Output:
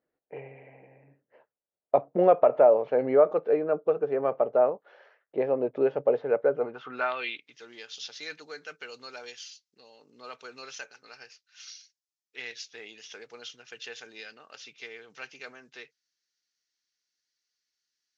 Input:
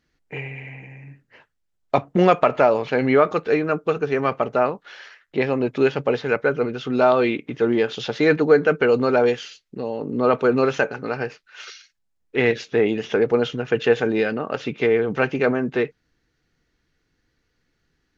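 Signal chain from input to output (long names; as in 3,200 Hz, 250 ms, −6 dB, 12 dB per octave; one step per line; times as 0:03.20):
dynamic equaliser 130 Hz, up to +4 dB, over −37 dBFS, Q 1.5
band-pass filter sweep 570 Hz → 5,600 Hz, 0:06.54–0:07.53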